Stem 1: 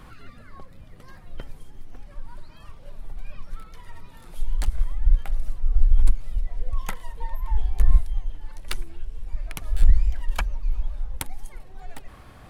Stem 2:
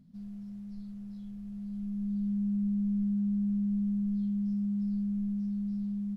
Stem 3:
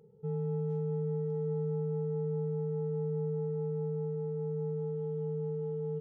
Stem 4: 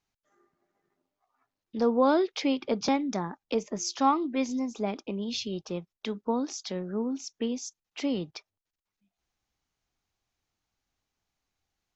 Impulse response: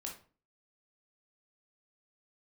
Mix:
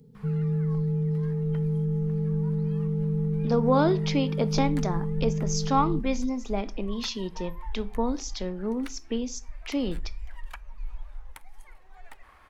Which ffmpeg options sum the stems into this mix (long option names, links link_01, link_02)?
-filter_complex "[0:a]equalizer=frequency=125:width_type=o:width=1:gain=-11,equalizer=frequency=250:width_type=o:width=1:gain=-4,equalizer=frequency=1000:width_type=o:width=1:gain=7,equalizer=frequency=2000:width_type=o:width=1:gain=8,alimiter=limit=-14dB:level=0:latency=1:release=248,adelay=150,volume=-12dB,asplit=2[link_01][link_02];[link_02]volume=-14.5dB[link_03];[1:a]aecho=1:1:7.5:0.57,volume=-0.5dB[link_04];[2:a]bass=frequency=250:gain=15,treble=frequency=4000:gain=13,volume=-3.5dB[link_05];[3:a]adelay=1700,volume=-0.5dB,asplit=2[link_06][link_07];[link_07]volume=-9.5dB[link_08];[4:a]atrim=start_sample=2205[link_09];[link_03][link_08]amix=inputs=2:normalize=0[link_10];[link_10][link_09]afir=irnorm=-1:irlink=0[link_11];[link_01][link_04][link_05][link_06][link_11]amix=inputs=5:normalize=0"